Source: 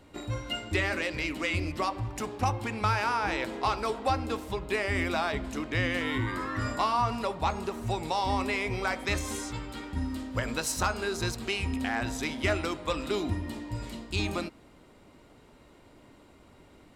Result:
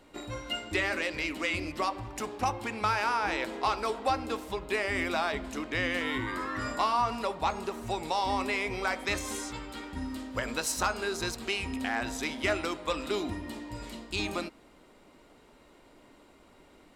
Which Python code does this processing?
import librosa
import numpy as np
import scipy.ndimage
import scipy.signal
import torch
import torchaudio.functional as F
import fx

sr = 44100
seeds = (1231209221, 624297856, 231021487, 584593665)

y = fx.peak_eq(x, sr, hz=97.0, db=-10.0, octaves=1.7)